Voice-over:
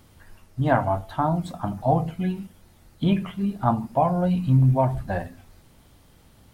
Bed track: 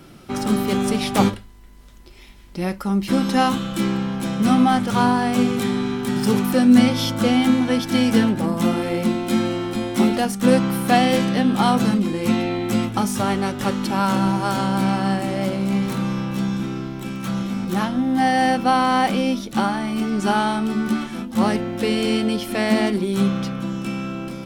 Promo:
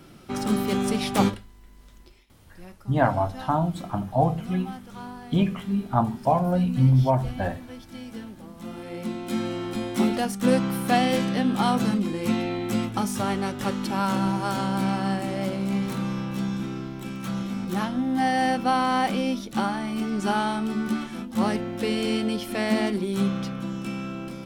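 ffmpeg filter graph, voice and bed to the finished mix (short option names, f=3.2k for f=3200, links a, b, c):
-filter_complex "[0:a]adelay=2300,volume=-0.5dB[a];[1:a]volume=12.5dB,afade=t=out:st=2.02:d=0.24:silence=0.133352,afade=t=in:st=8.58:d=1.16:silence=0.149624[b];[a][b]amix=inputs=2:normalize=0"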